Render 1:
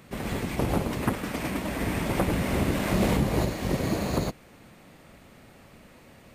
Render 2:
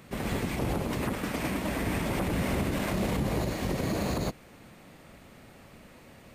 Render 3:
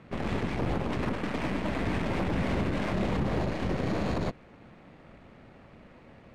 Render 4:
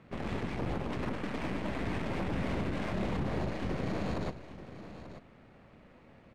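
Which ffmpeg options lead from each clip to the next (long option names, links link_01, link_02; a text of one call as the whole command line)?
ffmpeg -i in.wav -af "alimiter=limit=-20.5dB:level=0:latency=1:release=47" out.wav
ffmpeg -i in.wav -af "aeval=exprs='0.1*(cos(1*acos(clip(val(0)/0.1,-1,1)))-cos(1*PI/2))+0.0126*(cos(8*acos(clip(val(0)/0.1,-1,1)))-cos(8*PI/2))':channel_layout=same,adynamicsmooth=sensitivity=2:basefreq=3000" out.wav
ffmpeg -i in.wav -af "aecho=1:1:215|887:0.106|0.224,volume=-5dB" out.wav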